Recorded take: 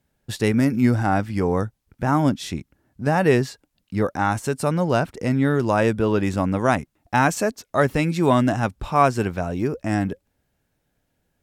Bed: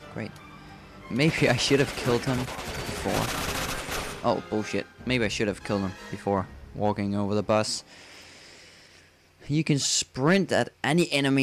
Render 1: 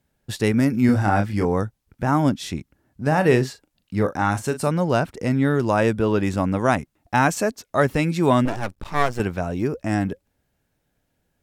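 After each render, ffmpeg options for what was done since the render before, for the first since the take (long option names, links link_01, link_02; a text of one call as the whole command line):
ffmpeg -i in.wav -filter_complex "[0:a]asettb=1/sr,asplit=3[link_01][link_02][link_03];[link_01]atrim=end=0.864[link_04];[link_02]atrim=start=0.86:end=1.45,asetpts=PTS-STARTPTS,afade=type=in:duration=0.004:curve=qsin,afade=type=out:start_time=0.586:duration=0.004:curve=qsin,asplit=2[link_05][link_06];[link_06]adelay=29,volume=-4dB[link_07];[link_05][link_07]amix=inputs=2:normalize=0,atrim=end_sample=26019[link_08];[link_03]atrim=start=1.446[link_09];[link_04][link_08]acrossfade=duration=0.004:curve1=hsin:curve2=qsin[link_10];[link_10][link_09]acrossfade=duration=0.004:curve1=qsin:curve2=hsin,asettb=1/sr,asplit=3[link_11][link_12][link_13];[link_11]atrim=end=3.074[link_14];[link_12]atrim=start=3.07:end=4.68,asetpts=PTS-STARTPTS,afade=type=in:duration=0.004:curve=qsin,afade=type=out:start_time=1.606:duration=0.004:curve=qsin,asplit=2[link_15][link_16];[link_16]adelay=39,volume=-11dB[link_17];[link_15][link_17]amix=inputs=2:normalize=0,atrim=end_sample=71001[link_18];[link_13]atrim=start=4.676[link_19];[link_14][link_18]acrossfade=duration=0.004:curve1=hsin:curve2=qsin[link_20];[link_20][link_19]acrossfade=duration=0.004:curve1=qsin:curve2=hsin,asettb=1/sr,asplit=3[link_21][link_22][link_23];[link_21]atrim=end=8.454[link_24];[link_22]atrim=start=8.45:end=9.2,asetpts=PTS-STARTPTS,afade=type=in:duration=0.004:curve=qsin,afade=type=out:start_time=0.746:duration=0.004:curve=qsin,aeval=exprs='max(val(0),0)':channel_layout=same[link_25];[link_23]atrim=start=9.196[link_26];[link_24][link_25]acrossfade=duration=0.004:curve1=hsin:curve2=qsin[link_27];[link_27][link_26]acrossfade=duration=0.004:curve1=qsin:curve2=hsin" out.wav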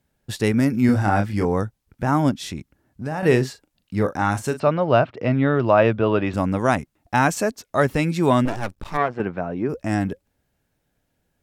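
ffmpeg -i in.wav -filter_complex "[0:a]asettb=1/sr,asplit=3[link_01][link_02][link_03];[link_01]atrim=end=2.314[link_04];[link_02]atrim=start=2.31:end=3.23,asetpts=PTS-STARTPTS,afade=type=in:duration=0.004:curve=qsin,afade=type=out:start_time=0.916:duration=0.004:curve=qsin,acompressor=threshold=-26dB:ratio=2.5:attack=3.2:release=140:knee=1:detection=peak[link_05];[link_03]atrim=start=3.226[link_06];[link_04][link_05]acrossfade=duration=0.004:curve1=hsin:curve2=qsin[link_07];[link_07][link_06]acrossfade=duration=0.004:curve1=qsin:curve2=hsin,asplit=3[link_08][link_09][link_10];[link_08]afade=type=out:start_time=4.58:duration=0.02[link_11];[link_09]highpass=110,equalizer=frequency=120:width_type=q:width=4:gain=6,equalizer=frequency=180:width_type=q:width=4:gain=-5,equalizer=frequency=630:width_type=q:width=4:gain=8,equalizer=frequency=1200:width_type=q:width=4:gain=5,equalizer=frequency=2700:width_type=q:width=4:gain=4,lowpass=frequency=4000:width=0.5412,lowpass=frequency=4000:width=1.3066,afade=type=in:start_time=4.58:duration=0.02,afade=type=out:start_time=6.33:duration=0.02[link_12];[link_10]afade=type=in:start_time=6.33:duration=0.02[link_13];[link_11][link_12][link_13]amix=inputs=3:normalize=0,asplit=3[link_14][link_15][link_16];[link_14]afade=type=out:start_time=8.96:duration=0.02[link_17];[link_15]highpass=150,lowpass=2000,afade=type=in:start_time=8.96:duration=0.02,afade=type=out:start_time=9.68:duration=0.02[link_18];[link_16]afade=type=in:start_time=9.68:duration=0.02[link_19];[link_17][link_18][link_19]amix=inputs=3:normalize=0" out.wav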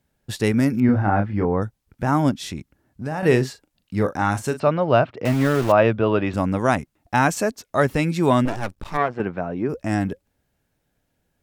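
ffmpeg -i in.wav -filter_complex "[0:a]asettb=1/sr,asplit=3[link_01][link_02][link_03];[link_01]atrim=end=0.804[link_04];[link_02]atrim=start=0.8:end=1.62,asetpts=PTS-STARTPTS,afade=type=in:duration=0.004:curve=qsin,afade=type=out:start_time=0.816:duration=0.004:curve=qsin,lowpass=1800[link_05];[link_03]atrim=start=1.616[link_06];[link_04][link_05]acrossfade=duration=0.004:curve1=hsin:curve2=qsin[link_07];[link_07][link_06]acrossfade=duration=0.004:curve1=qsin:curve2=hsin,asettb=1/sr,asplit=3[link_08][link_09][link_10];[link_08]atrim=end=5.254[link_11];[link_09]atrim=start=5.25:end=5.72,asetpts=PTS-STARTPTS,afade=type=in:duration=0.004:curve=qsin,afade=type=out:start_time=0.466:duration=0.004:curve=qsin,aeval=exprs='val(0)*gte(abs(val(0)),0.0531)':channel_layout=same[link_12];[link_10]atrim=start=5.716[link_13];[link_11][link_12]acrossfade=duration=0.004:curve1=hsin:curve2=qsin[link_14];[link_14][link_13]acrossfade=duration=0.004:curve1=qsin:curve2=hsin" out.wav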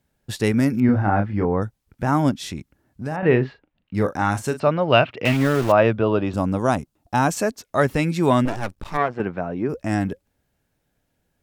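ffmpeg -i in.wav -filter_complex "[0:a]asettb=1/sr,asplit=3[link_01][link_02][link_03];[link_01]atrim=end=3.164[link_04];[link_02]atrim=start=3.16:end=3.95,asetpts=PTS-STARTPTS,afade=type=in:duration=0.004:curve=qsin,afade=type=out:start_time=0.786:duration=0.004:curve=qsin,lowpass=frequency=2900:width=0.5412,lowpass=frequency=2900:width=1.3066[link_05];[link_03]atrim=start=3.946[link_06];[link_04][link_05]acrossfade=duration=0.004:curve1=hsin:curve2=qsin[link_07];[link_07][link_06]acrossfade=duration=0.004:curve1=qsin:curve2=hsin,asettb=1/sr,asplit=3[link_08][link_09][link_10];[link_08]atrim=end=4.924[link_11];[link_09]atrim=start=4.92:end=5.37,asetpts=PTS-STARTPTS,afade=type=in:duration=0.004:curve=qsin,afade=type=out:start_time=0.446:duration=0.004:curve=qsin,equalizer=frequency=2700:width_type=o:width=0.95:gain=12.5[link_12];[link_10]atrim=start=5.366[link_13];[link_11][link_12]acrossfade=duration=0.004:curve1=hsin:curve2=qsin[link_14];[link_14][link_13]acrossfade=duration=0.004:curve1=qsin:curve2=hsin,asettb=1/sr,asplit=3[link_15][link_16][link_17];[link_15]atrim=end=6.034[link_18];[link_16]atrim=start=6.03:end=7.31,asetpts=PTS-STARTPTS,afade=type=in:duration=0.004:curve=qsin,afade=type=out:start_time=1.276:duration=0.004:curve=qsin,equalizer=frequency=2000:width=1.8:gain=-8.5[link_19];[link_17]atrim=start=7.306[link_20];[link_18][link_19]acrossfade=duration=0.004:curve1=hsin:curve2=qsin[link_21];[link_21][link_20]acrossfade=duration=0.004:curve1=qsin:curve2=hsin" out.wav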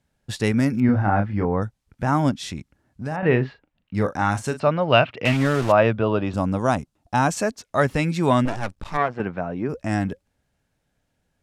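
ffmpeg -i in.wav -af "lowpass=10000,equalizer=frequency=360:width=1.8:gain=-3.5" out.wav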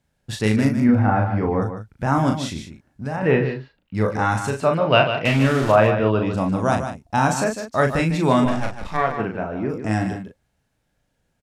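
ffmpeg -i in.wav -filter_complex "[0:a]asplit=2[link_01][link_02];[link_02]adelay=37,volume=-5dB[link_03];[link_01][link_03]amix=inputs=2:normalize=0,aecho=1:1:150:0.355" out.wav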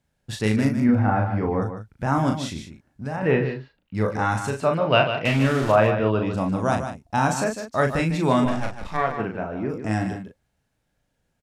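ffmpeg -i in.wav -af "volume=-2.5dB" out.wav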